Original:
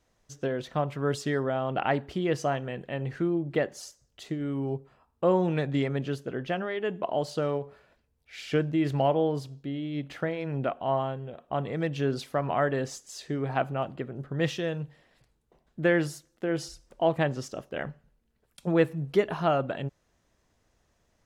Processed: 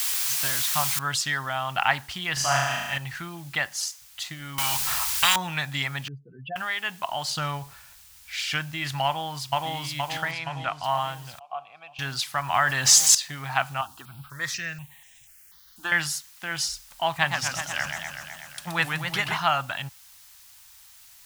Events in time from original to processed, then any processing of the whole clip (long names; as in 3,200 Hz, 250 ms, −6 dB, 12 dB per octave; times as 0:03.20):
0:00.99: noise floor change −40 dB −65 dB
0:02.33–0:02.98: flutter between parallel walls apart 6.3 metres, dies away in 1.2 s
0:04.58–0:05.36: every bin compressed towards the loudest bin 4 to 1
0:06.08–0:06.56: expanding power law on the bin magnitudes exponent 3.2
0:07.30–0:08.44: low-shelf EQ 270 Hz +9.5 dB
0:09.05–0:09.70: delay throw 470 ms, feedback 60%, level 0 dB
0:10.31–0:10.84: high-frequency loss of the air 70 metres
0:11.39–0:11.99: formant filter a
0:12.54–0:13.15: envelope flattener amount 70%
0:13.81–0:15.92: step-sequenced phaser 4.1 Hz 570–4,500 Hz
0:17.09–0:19.38: feedback echo with a swinging delay time 125 ms, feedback 74%, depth 210 cents, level −5.5 dB
whole clip: drawn EQ curve 110 Hz 0 dB, 460 Hz −21 dB, 830 Hz +6 dB, 4,700 Hz +14 dB